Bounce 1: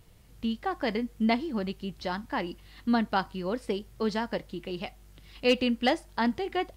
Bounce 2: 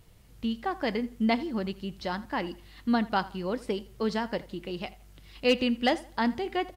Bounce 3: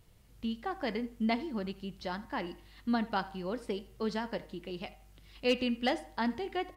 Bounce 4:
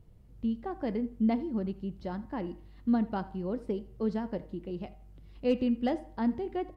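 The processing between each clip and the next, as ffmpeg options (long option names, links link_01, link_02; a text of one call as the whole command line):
ffmpeg -i in.wav -filter_complex "[0:a]asplit=2[link_01][link_02];[link_02]adelay=83,lowpass=frequency=4500:poles=1,volume=-19dB,asplit=2[link_03][link_04];[link_04]adelay=83,lowpass=frequency=4500:poles=1,volume=0.33,asplit=2[link_05][link_06];[link_06]adelay=83,lowpass=frequency=4500:poles=1,volume=0.33[link_07];[link_01][link_03][link_05][link_07]amix=inputs=4:normalize=0" out.wav
ffmpeg -i in.wav -af "bandreject=frequency=154.7:width_type=h:width=4,bandreject=frequency=309.4:width_type=h:width=4,bandreject=frequency=464.1:width_type=h:width=4,bandreject=frequency=618.8:width_type=h:width=4,bandreject=frequency=773.5:width_type=h:width=4,bandreject=frequency=928.2:width_type=h:width=4,bandreject=frequency=1082.9:width_type=h:width=4,bandreject=frequency=1237.6:width_type=h:width=4,bandreject=frequency=1392.3:width_type=h:width=4,bandreject=frequency=1547:width_type=h:width=4,bandreject=frequency=1701.7:width_type=h:width=4,bandreject=frequency=1856.4:width_type=h:width=4,bandreject=frequency=2011.1:width_type=h:width=4,bandreject=frequency=2165.8:width_type=h:width=4,bandreject=frequency=2320.5:width_type=h:width=4,bandreject=frequency=2475.2:width_type=h:width=4,bandreject=frequency=2629.9:width_type=h:width=4,bandreject=frequency=2784.6:width_type=h:width=4,volume=-5dB" out.wav
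ffmpeg -i in.wav -af "tiltshelf=frequency=910:gain=9.5,volume=-3.5dB" out.wav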